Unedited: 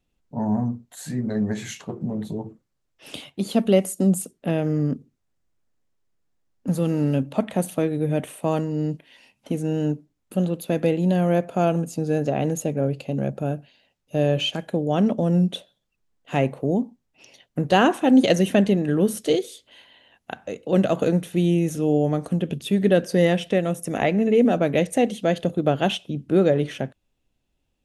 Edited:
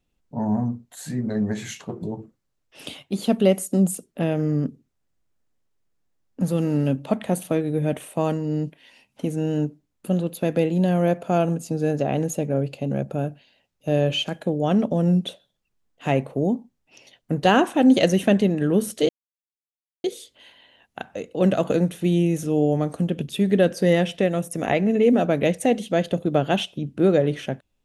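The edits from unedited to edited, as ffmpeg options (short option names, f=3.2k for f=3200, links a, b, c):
-filter_complex "[0:a]asplit=3[a][b][c];[a]atrim=end=2.032[d];[b]atrim=start=2.298:end=19.36,asetpts=PTS-STARTPTS,afade=t=out:st=17.058:d=0.004:c=hsin,apad=pad_dur=0.95[e];[c]atrim=start=19.36,asetpts=PTS-STARTPTS,afade=t=in:d=0.004:c=hsin[f];[e][f]concat=n=2:v=0:a=1[g];[d][g]acrossfade=d=0.004:c1=hsin:c2=hsin"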